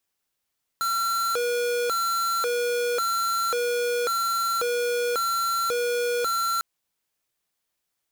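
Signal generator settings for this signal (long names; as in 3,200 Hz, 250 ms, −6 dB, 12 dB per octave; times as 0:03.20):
siren hi-lo 482–1,360 Hz 0.92 per second square −25 dBFS 5.80 s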